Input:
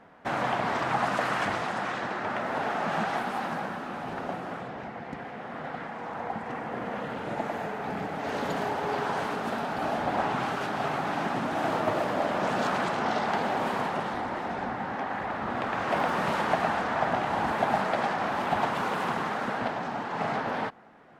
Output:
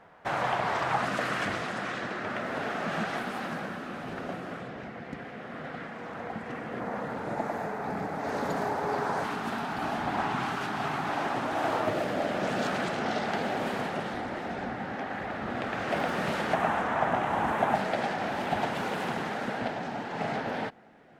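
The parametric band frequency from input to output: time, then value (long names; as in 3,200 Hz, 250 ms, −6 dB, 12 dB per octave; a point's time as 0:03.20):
parametric band −8.5 dB 0.63 octaves
250 Hz
from 0:01.01 880 Hz
from 0:06.80 3,000 Hz
from 0:09.24 540 Hz
from 0:11.09 190 Hz
from 0:11.87 1,000 Hz
from 0:16.54 4,600 Hz
from 0:17.75 1,100 Hz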